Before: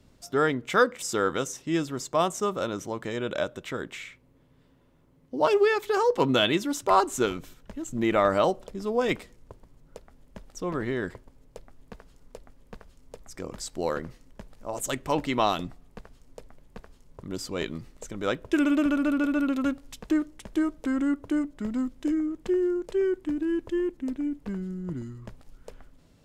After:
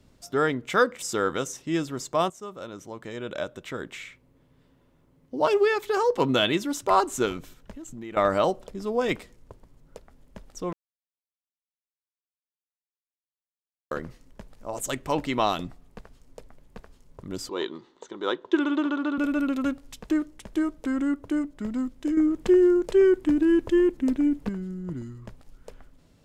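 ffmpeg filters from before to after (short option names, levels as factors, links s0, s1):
-filter_complex "[0:a]asettb=1/sr,asplit=3[s0][s1][s2];[s0]atrim=end=7.714[s3];[s1]atrim=start=7.71:end=8.17,asetpts=PTS-STARTPTS,afade=t=in:d=0.004:c=qsin,afade=t=out:st=0.456:d=0.004:c=qsin,acompressor=threshold=0.0112:ratio=3:attack=3.2:release=140:knee=1:detection=peak[s4];[s2]atrim=start=8.166[s5];[s3][s4]acrossfade=d=0.004:c1=hsin:c2=qsin[s6];[s6][s5]acrossfade=d=0.004:c1=qsin:c2=hsin,asettb=1/sr,asplit=3[s7][s8][s9];[s7]atrim=end=17.494[s10];[s8]atrim=start=17.49:end=19.18,asetpts=PTS-STARTPTS,afade=t=in:d=0.004:c=qsin,afade=t=out:st=1.686:d=0.004:c=qsin,highpass=350,equalizer=f=360:t=q:w=4:g=9,equalizer=f=620:t=q:w=4:g=-6,equalizer=f=960:t=q:w=4:g=9,equalizer=f=2400:t=q:w=4:g=-9,equalizer=f=3600:t=q:w=4:g=7,equalizer=f=5200:t=q:w=4:g=-8,lowpass=f=5700:w=0.5412,lowpass=f=5700:w=1.3066[s11];[s9]atrim=start=19.176[s12];[s10][s11]acrossfade=d=0.004:c1=hsin:c2=qsin[s13];[s13][s12]acrossfade=d=0.004:c1=qsin:c2=hsin,asettb=1/sr,asplit=3[s14][s15][s16];[s14]atrim=end=22.174[s17];[s15]atrim=start=22.17:end=24.49,asetpts=PTS-STARTPTS,afade=t=in:d=0.004:c=qsin,afade=t=out:st=2.316:d=0.004:c=qsin,acontrast=84[s18];[s16]atrim=start=24.486[s19];[s17][s18]acrossfade=d=0.004:c1=hsin:c2=qsin[s20];[s20][s19]acrossfade=d=0.004:c1=qsin:c2=hsin,asplit=4[s21][s22][s23][s24];[s21]atrim=end=2.3,asetpts=PTS-STARTPTS,afade=t=out:st=2.296:d=0.004:c=hsin:silence=0.199526[s25];[s22]atrim=start=2.3:end=10.73,asetpts=PTS-STARTPTS,afade=t=in:d=1.71:silence=0.199526,afade=t=out:st=8.426:d=0.004:c=hsin[s26];[s23]atrim=start=10.73:end=13.91,asetpts=PTS-STARTPTS,volume=0[s27];[s24]atrim=start=13.91,asetpts=PTS-STARTPTS,afade=t=in:d=0.004:c=hsin[s28];[s25][s26][s27][s28]concat=n=4:v=0:a=1"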